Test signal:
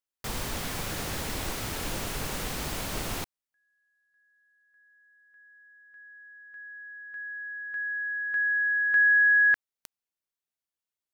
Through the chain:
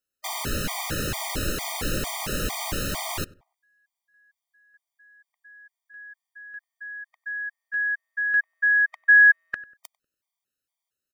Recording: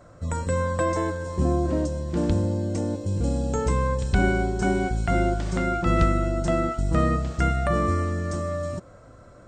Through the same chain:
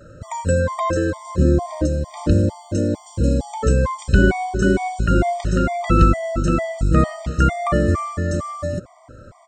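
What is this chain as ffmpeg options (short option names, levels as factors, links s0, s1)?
-filter_complex "[0:a]asplit=2[s0][s1];[s1]adelay=96,lowpass=f=1500:p=1,volume=0.0841,asplit=2[s2][s3];[s3]adelay=96,lowpass=f=1500:p=1,volume=0.36,asplit=2[s4][s5];[s5]adelay=96,lowpass=f=1500:p=1,volume=0.36[s6];[s0][s2][s4][s6]amix=inputs=4:normalize=0,afftfilt=real='re*gt(sin(2*PI*2.2*pts/sr)*(1-2*mod(floor(b*sr/1024/620),2)),0)':imag='im*gt(sin(2*PI*2.2*pts/sr)*(1-2*mod(floor(b*sr/1024/620),2)),0)':win_size=1024:overlap=0.75,volume=2.37"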